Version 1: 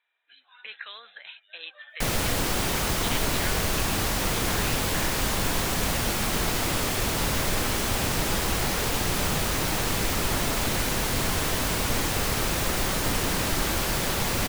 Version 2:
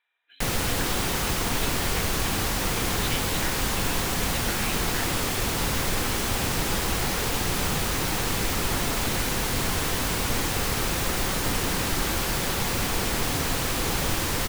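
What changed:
background: entry -1.60 s; master: add notch 620 Hz, Q 13

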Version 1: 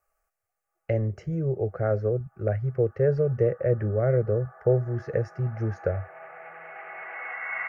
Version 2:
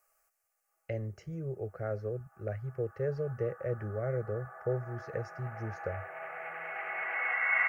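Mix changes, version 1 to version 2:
speech -11.0 dB; master: add high shelf 2300 Hz +10 dB

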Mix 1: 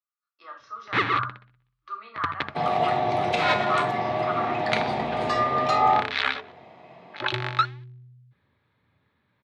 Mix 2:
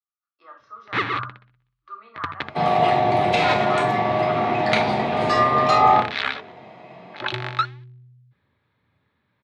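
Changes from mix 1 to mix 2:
speech: add high shelf 2100 Hz -11 dB; second sound: send +8.0 dB

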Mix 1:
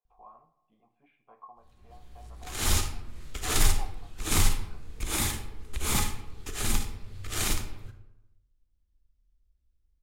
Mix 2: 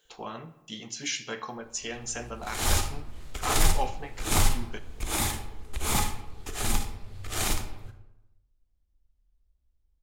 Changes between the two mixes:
speech: remove vocal tract filter a; master: add bell 740 Hz +6.5 dB 0.85 oct

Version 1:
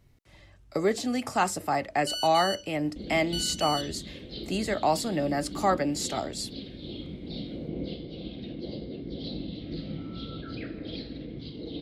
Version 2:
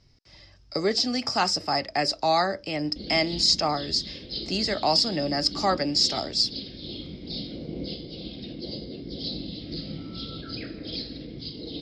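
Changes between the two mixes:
first sound: muted; master: add synth low-pass 5100 Hz, resonance Q 11

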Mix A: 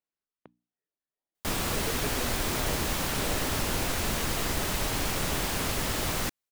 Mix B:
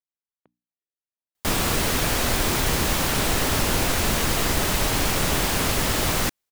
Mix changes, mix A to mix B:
speech -9.5 dB; background +7.0 dB

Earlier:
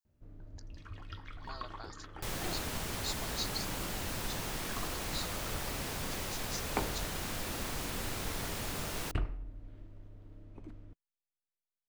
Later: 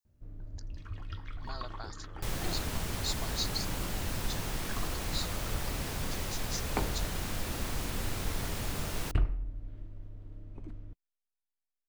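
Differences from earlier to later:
speech +3.5 dB; master: add low shelf 150 Hz +7.5 dB

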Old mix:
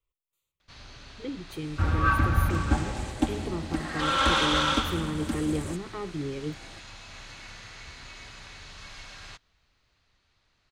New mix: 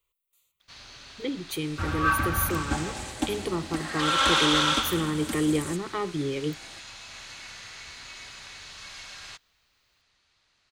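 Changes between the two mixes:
speech +7.5 dB; master: add tilt +2 dB/oct

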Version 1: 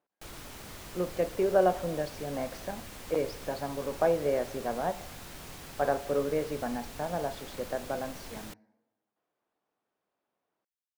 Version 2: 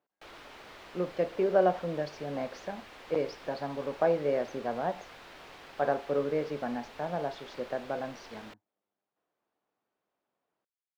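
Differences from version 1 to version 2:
background: add three-band isolator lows -15 dB, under 330 Hz, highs -20 dB, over 4300 Hz; reverb: off

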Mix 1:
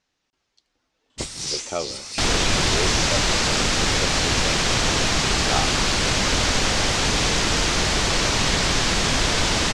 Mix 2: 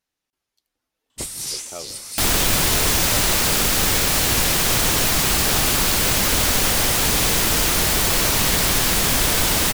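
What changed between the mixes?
speech -9.0 dB; first sound -3.0 dB; master: remove LPF 6800 Hz 24 dB/oct

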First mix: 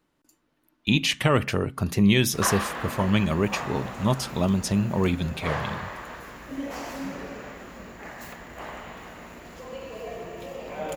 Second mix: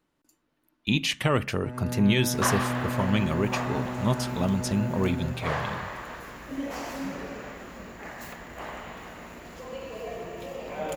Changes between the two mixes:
speech -3.0 dB; first sound: unmuted

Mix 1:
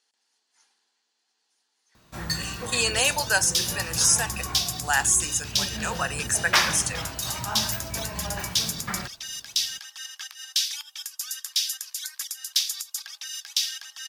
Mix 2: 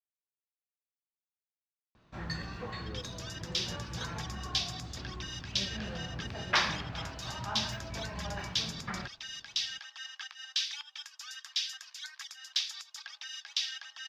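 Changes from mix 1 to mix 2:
speech: muted; first sound -5.0 dB; master: add air absorption 200 m

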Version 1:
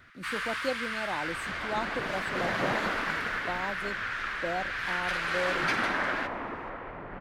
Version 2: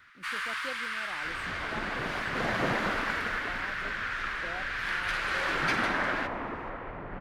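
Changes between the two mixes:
speech -10.5 dB; second sound: add low shelf 160 Hz +5 dB

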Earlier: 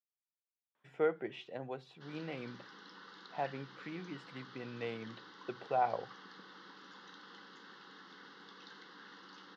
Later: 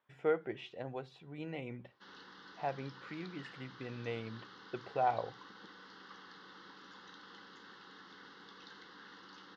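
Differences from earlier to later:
speech: entry -0.75 s; master: remove HPF 130 Hz 24 dB/oct

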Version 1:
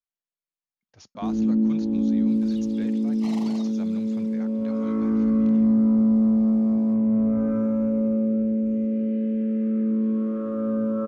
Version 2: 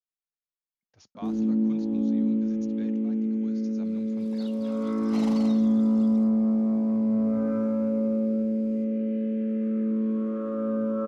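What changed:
speech -7.0 dB; first sound: add low shelf 130 Hz -12 dB; second sound: entry +1.90 s

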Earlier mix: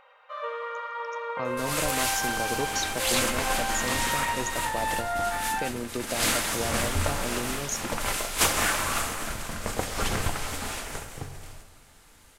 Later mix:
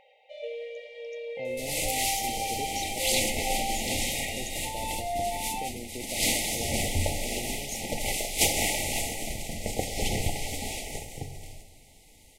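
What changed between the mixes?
speech -7.5 dB; master: add brick-wall FIR band-stop 880–1900 Hz

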